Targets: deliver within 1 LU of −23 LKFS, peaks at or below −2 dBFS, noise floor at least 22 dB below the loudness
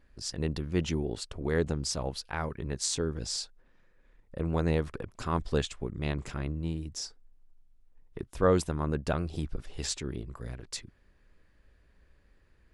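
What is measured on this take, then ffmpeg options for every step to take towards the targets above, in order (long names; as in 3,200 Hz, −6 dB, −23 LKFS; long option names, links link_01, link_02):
integrated loudness −32.5 LKFS; sample peak −12.5 dBFS; target loudness −23.0 LKFS
→ -af "volume=9.5dB"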